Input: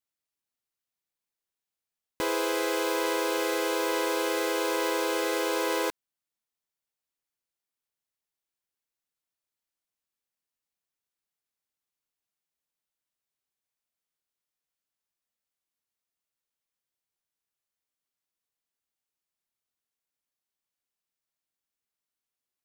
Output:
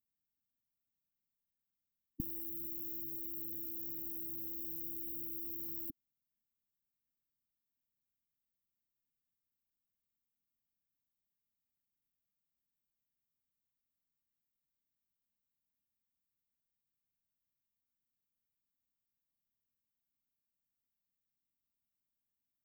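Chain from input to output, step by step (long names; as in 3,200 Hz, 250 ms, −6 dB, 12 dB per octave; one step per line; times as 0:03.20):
linear-phase brick-wall band-stop 300–14,000 Hz
level +4 dB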